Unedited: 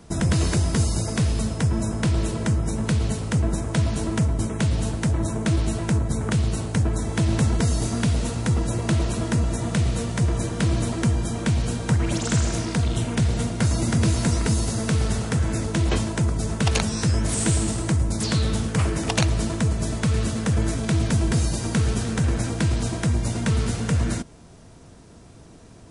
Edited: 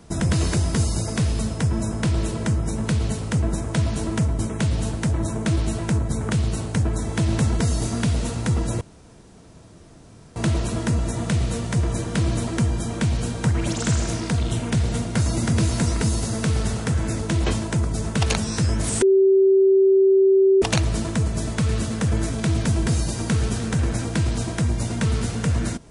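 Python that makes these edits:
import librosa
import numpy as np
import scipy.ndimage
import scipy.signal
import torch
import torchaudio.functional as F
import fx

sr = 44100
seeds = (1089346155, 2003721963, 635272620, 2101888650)

y = fx.edit(x, sr, fx.insert_room_tone(at_s=8.81, length_s=1.55),
    fx.bleep(start_s=17.47, length_s=1.6, hz=386.0, db=-12.0), tone=tone)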